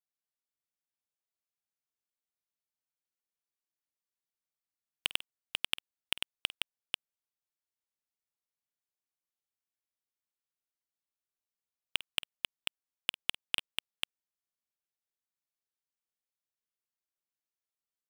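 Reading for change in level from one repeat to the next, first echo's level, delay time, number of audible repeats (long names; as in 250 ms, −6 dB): repeats not evenly spaced, −18.5 dB, 50 ms, 2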